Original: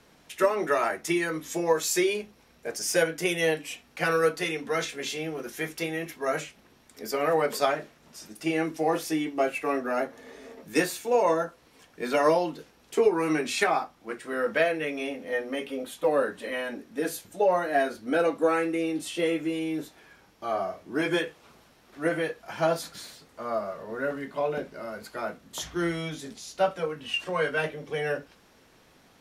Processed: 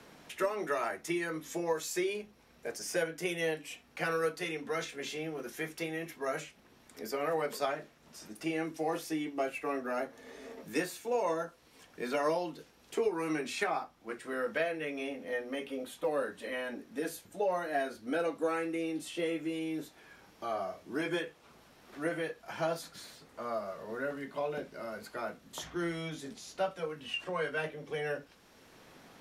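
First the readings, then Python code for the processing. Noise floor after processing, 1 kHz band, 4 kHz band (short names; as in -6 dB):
-62 dBFS, -8.0 dB, -7.5 dB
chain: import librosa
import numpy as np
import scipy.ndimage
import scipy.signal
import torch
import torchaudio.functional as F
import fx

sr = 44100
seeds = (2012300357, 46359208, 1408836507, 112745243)

y = fx.band_squash(x, sr, depth_pct=40)
y = F.gain(torch.from_numpy(y), -7.5).numpy()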